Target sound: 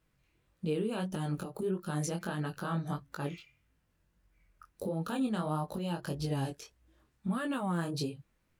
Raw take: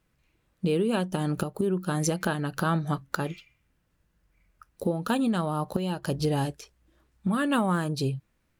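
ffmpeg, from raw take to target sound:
-af "alimiter=limit=0.075:level=0:latency=1:release=127,flanger=delay=18.5:depth=5.3:speed=1.6"

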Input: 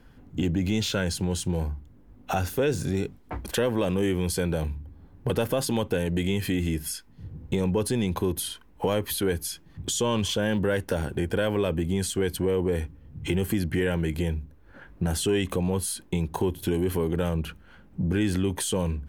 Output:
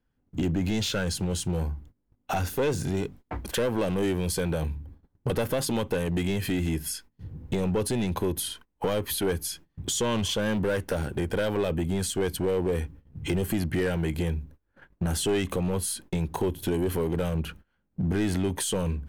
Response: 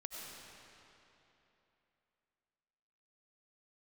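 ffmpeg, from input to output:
-af "aeval=exprs='clip(val(0),-1,0.075)':c=same,agate=range=0.0708:threshold=0.00562:ratio=16:detection=peak"

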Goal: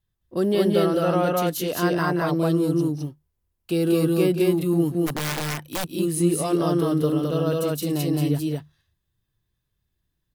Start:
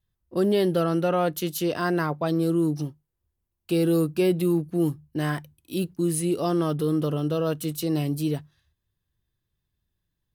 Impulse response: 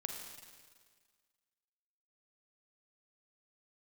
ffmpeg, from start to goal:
-filter_complex "[0:a]aecho=1:1:177.8|212.8:0.316|0.891,asplit=3[s0][s1][s2];[s0]afade=t=out:st=5.06:d=0.02[s3];[s1]aeval=exprs='(mod(11.9*val(0)+1,2)-1)/11.9':c=same,afade=t=in:st=5.06:d=0.02,afade=t=out:st=5.89:d=0.02[s4];[s2]afade=t=in:st=5.89:d=0.02[s5];[s3][s4][s5]amix=inputs=3:normalize=0"

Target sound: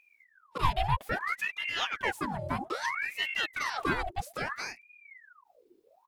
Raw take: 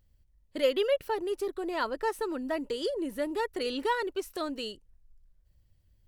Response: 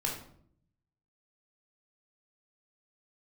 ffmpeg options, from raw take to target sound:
-filter_complex "[0:a]asplit=3[s0][s1][s2];[s1]asetrate=33038,aresample=44100,atempo=1.33484,volume=0.316[s3];[s2]asetrate=37084,aresample=44100,atempo=1.18921,volume=0.631[s4];[s0][s3][s4]amix=inputs=3:normalize=0,aeval=exprs='val(0)*sin(2*PI*1400*n/s+1400*0.75/0.61*sin(2*PI*0.61*n/s))':c=same"

